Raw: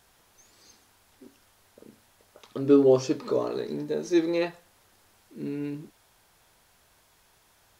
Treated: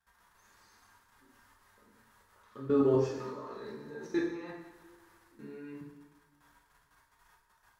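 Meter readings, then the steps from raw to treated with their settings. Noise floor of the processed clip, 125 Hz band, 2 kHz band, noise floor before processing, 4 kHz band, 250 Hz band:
−70 dBFS, −4.0 dB, −5.5 dB, −63 dBFS, −12.5 dB, −8.0 dB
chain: flat-topped bell 1,300 Hz +10.5 dB 1.3 octaves
harmonic and percussive parts rebalanced percussive −7 dB
low-shelf EQ 93 Hz +6.5 dB
output level in coarse steps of 20 dB
coupled-rooms reverb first 0.81 s, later 2.5 s, DRR −4 dB
level −8 dB

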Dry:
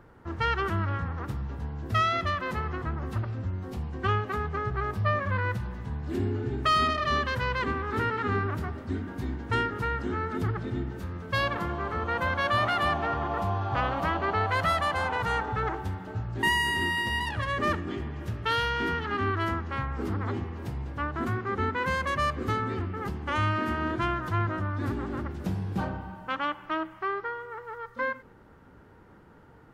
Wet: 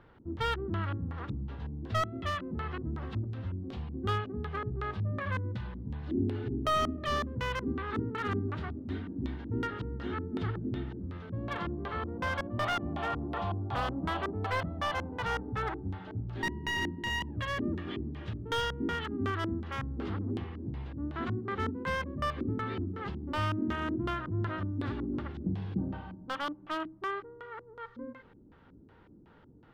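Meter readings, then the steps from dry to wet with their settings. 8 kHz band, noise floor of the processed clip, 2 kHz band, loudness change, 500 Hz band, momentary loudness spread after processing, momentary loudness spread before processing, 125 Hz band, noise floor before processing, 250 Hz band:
−5.0 dB, −57 dBFS, −7.5 dB, −5.5 dB, −5.0 dB, 7 LU, 10 LU, −4.5 dB, −53 dBFS, −1.0 dB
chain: auto-filter low-pass square 2.7 Hz 290–3,500 Hz
slew-rate limiting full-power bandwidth 120 Hz
level −5 dB

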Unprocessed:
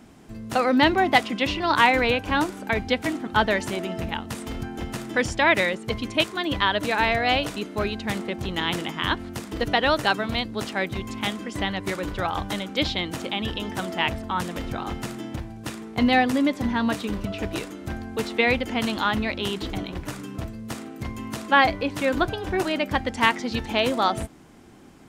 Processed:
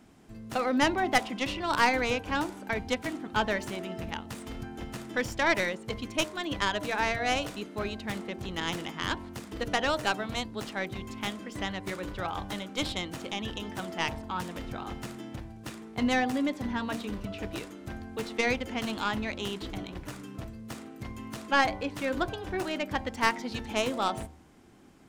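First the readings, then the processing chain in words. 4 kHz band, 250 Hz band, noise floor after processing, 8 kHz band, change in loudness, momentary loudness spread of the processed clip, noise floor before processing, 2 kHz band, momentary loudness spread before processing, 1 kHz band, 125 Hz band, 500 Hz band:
−7.5 dB, −7.0 dB, −47 dBFS, −2.5 dB, −7.0 dB, 15 LU, −40 dBFS, −7.0 dB, 14 LU, −7.0 dB, −7.5 dB, −7.0 dB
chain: stylus tracing distortion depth 0.099 ms
hum removal 76.78 Hz, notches 14
level −7 dB

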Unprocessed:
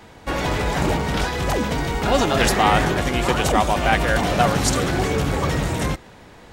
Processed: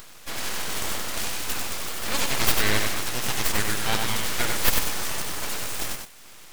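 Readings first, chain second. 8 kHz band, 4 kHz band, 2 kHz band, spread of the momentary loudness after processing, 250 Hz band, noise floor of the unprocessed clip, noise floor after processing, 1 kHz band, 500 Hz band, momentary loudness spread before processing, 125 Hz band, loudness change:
+1.5 dB, −1.0 dB, −5.0 dB, 8 LU, −13.0 dB, −45 dBFS, −45 dBFS, −12.0 dB, −13.5 dB, 7 LU, −13.0 dB, −6.0 dB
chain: RIAA equalisation recording
upward compression, threshold −31 dBFS
full-wave rectification
on a send: feedback echo with a high-pass in the loop 122 ms, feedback 73%, level −19 dB
on the sum: feedback echo at a low word length 95 ms, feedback 35%, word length 5 bits, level −4.5 dB
level −5.5 dB

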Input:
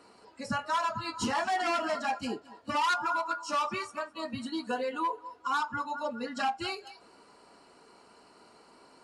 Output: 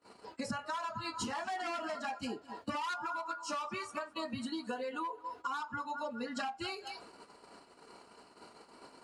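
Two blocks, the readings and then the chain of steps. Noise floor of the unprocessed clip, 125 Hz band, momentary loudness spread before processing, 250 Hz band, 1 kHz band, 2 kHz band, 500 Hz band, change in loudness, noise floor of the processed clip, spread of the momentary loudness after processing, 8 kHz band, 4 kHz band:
−59 dBFS, −5.0 dB, 9 LU, −4.0 dB, −7.5 dB, −7.0 dB, −6.0 dB, −7.0 dB, −61 dBFS, 19 LU, −4.0 dB, −6.0 dB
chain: downward compressor 12 to 1, threshold −42 dBFS, peak gain reduction 17 dB
notch filter 5,500 Hz, Q 29
noise gate −56 dBFS, range −30 dB
level +6.5 dB

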